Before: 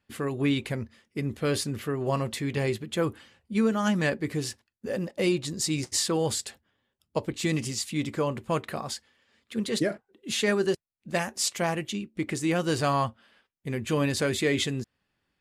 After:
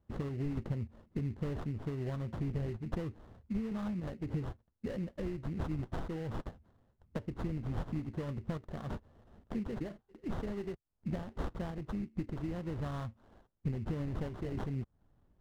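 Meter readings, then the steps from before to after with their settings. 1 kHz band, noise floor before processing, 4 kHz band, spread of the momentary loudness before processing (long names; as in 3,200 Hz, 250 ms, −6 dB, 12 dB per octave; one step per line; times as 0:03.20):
−15.0 dB, −80 dBFS, −25.0 dB, 9 LU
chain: sample-rate reduction 2,400 Hz, jitter 20%
sample-and-hold tremolo
downward compressor 12 to 1, threshold −41 dBFS, peak gain reduction 20 dB
RIAA equalisation playback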